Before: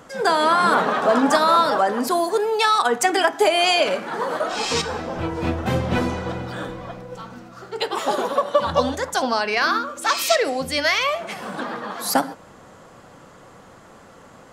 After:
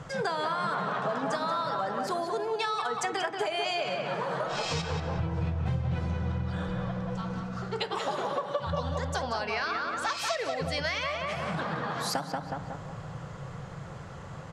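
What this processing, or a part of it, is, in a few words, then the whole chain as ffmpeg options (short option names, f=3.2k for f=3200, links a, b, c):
jukebox: -filter_complex "[0:a]lowpass=6.8k,lowshelf=f=190:t=q:w=3:g=8,asplit=2[a][b];[b]adelay=183,lowpass=f=2.9k:p=1,volume=-5dB,asplit=2[c][d];[d]adelay=183,lowpass=f=2.9k:p=1,volume=0.41,asplit=2[e][f];[f]adelay=183,lowpass=f=2.9k:p=1,volume=0.41,asplit=2[g][h];[h]adelay=183,lowpass=f=2.9k:p=1,volume=0.41,asplit=2[i][j];[j]adelay=183,lowpass=f=2.9k:p=1,volume=0.41[k];[a][c][e][g][i][k]amix=inputs=6:normalize=0,acompressor=threshold=-29dB:ratio=5"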